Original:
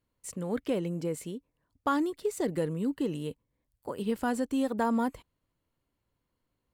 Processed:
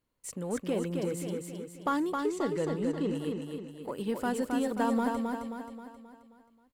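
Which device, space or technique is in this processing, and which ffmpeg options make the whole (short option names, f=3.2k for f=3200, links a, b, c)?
parallel distortion: -filter_complex "[0:a]asettb=1/sr,asplit=3[a][b][c];[a]atrim=end=2.124[d];[b]atrim=start=2.12:end=3.15,asetpts=PTS-STARTPTS,afade=t=in:d=0.004:c=qsin,afade=t=out:st=1.026:d=0.004:c=qsin,lowpass=6.4k[e];[c]atrim=start=3.146[f];[d][e]acrossfade=d=0.004:c1=hsin:c2=qsin[g];[g][f]acrossfade=d=0.004:c1=qsin:c2=hsin,equalizer=f=80:t=o:w=1.7:g=-5.5,asplit=2[h][i];[i]asoftclip=type=hard:threshold=-33.5dB,volume=-8.5dB[j];[h][j]amix=inputs=2:normalize=0,aecho=1:1:266|532|798|1064|1330|1596:0.631|0.309|0.151|0.0742|0.0364|0.0178,volume=-2.5dB"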